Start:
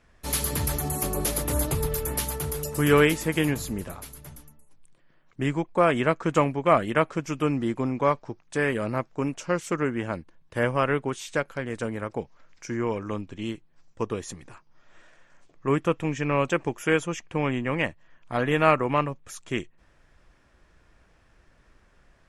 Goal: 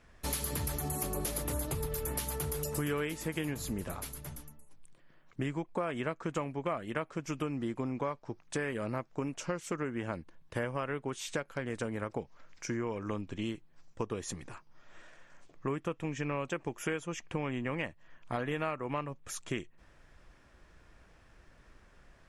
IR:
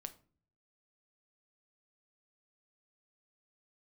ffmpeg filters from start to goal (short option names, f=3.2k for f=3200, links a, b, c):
-af "acompressor=threshold=-32dB:ratio=6"